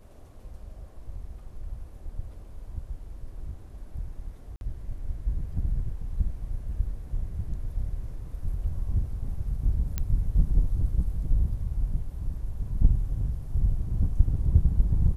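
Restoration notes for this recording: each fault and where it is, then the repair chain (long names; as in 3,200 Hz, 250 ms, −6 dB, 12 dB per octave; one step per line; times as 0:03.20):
0:04.56–0:04.61: drop-out 51 ms
0:09.98: click −14 dBFS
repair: click removal
repair the gap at 0:04.56, 51 ms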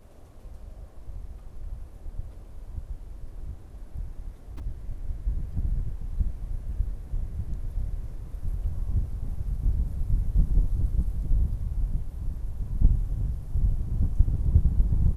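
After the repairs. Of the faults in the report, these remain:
none of them is left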